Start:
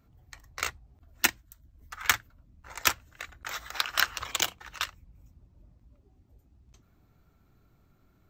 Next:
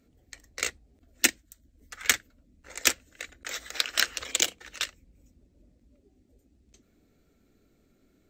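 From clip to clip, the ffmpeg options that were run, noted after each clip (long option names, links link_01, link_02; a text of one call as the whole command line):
ffmpeg -i in.wav -af "equalizer=frequency=125:width_type=o:width=1:gain=-7,equalizer=frequency=250:width_type=o:width=1:gain=9,equalizer=frequency=500:width_type=o:width=1:gain=10,equalizer=frequency=1000:width_type=o:width=1:gain=-10,equalizer=frequency=2000:width_type=o:width=1:gain=6,equalizer=frequency=4000:width_type=o:width=1:gain=4,equalizer=frequency=8000:width_type=o:width=1:gain=10,volume=-4dB" out.wav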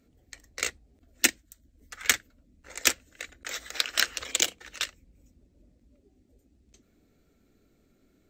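ffmpeg -i in.wav -af anull out.wav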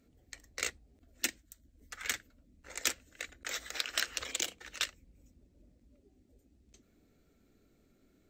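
ffmpeg -i in.wav -af "alimiter=limit=-12.5dB:level=0:latency=1:release=116,volume=-2.5dB" out.wav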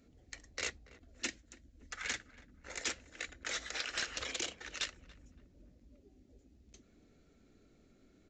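ffmpeg -i in.wav -filter_complex "[0:a]aresample=16000,asoftclip=type=tanh:threshold=-32.5dB,aresample=44100,asplit=2[link_01][link_02];[link_02]adelay=283,lowpass=frequency=1300:poles=1,volume=-17dB,asplit=2[link_03][link_04];[link_04]adelay=283,lowpass=frequency=1300:poles=1,volume=0.41,asplit=2[link_05][link_06];[link_06]adelay=283,lowpass=frequency=1300:poles=1,volume=0.41[link_07];[link_01][link_03][link_05][link_07]amix=inputs=4:normalize=0,volume=2.5dB" out.wav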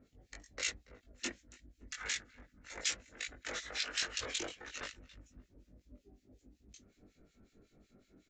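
ffmpeg -i in.wav -filter_complex "[0:a]acrossover=split=1700[link_01][link_02];[link_01]aeval=exprs='val(0)*(1-1/2+1/2*cos(2*PI*5.4*n/s))':channel_layout=same[link_03];[link_02]aeval=exprs='val(0)*(1-1/2-1/2*cos(2*PI*5.4*n/s))':channel_layout=same[link_04];[link_03][link_04]amix=inputs=2:normalize=0,asplit=2[link_05][link_06];[link_06]adelay=20,volume=-2dB[link_07];[link_05][link_07]amix=inputs=2:normalize=0,volume=2.5dB" out.wav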